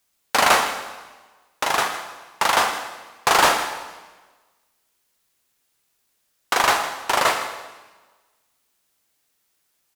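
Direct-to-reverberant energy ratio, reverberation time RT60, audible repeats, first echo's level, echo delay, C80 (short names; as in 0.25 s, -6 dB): 5.5 dB, 1.3 s, 1, -14.0 dB, 0.159 s, 8.5 dB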